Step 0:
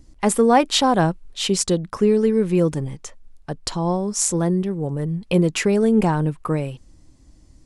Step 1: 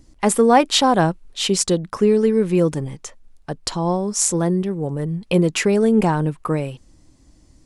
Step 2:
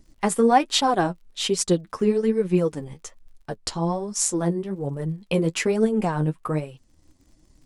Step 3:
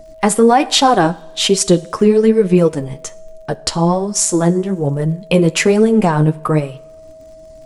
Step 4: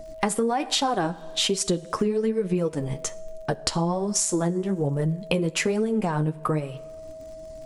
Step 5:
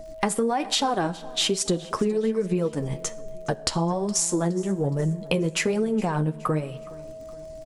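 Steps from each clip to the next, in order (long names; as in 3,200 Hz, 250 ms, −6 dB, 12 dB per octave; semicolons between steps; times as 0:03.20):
low-shelf EQ 130 Hz −5 dB; level +2 dB
flanger 1.2 Hz, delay 4.5 ms, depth 9.4 ms, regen +29%; surface crackle 56 per second −48 dBFS; transient designer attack +1 dB, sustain −5 dB; level −1 dB
steady tone 640 Hz −47 dBFS; coupled-rooms reverb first 0.61 s, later 2 s, from −18 dB, DRR 17 dB; boost into a limiter +11.5 dB; level −1 dB
downward compressor, threshold −20 dBFS, peak gain reduction 13.5 dB; level −1.5 dB
repeating echo 417 ms, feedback 46%, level −21.5 dB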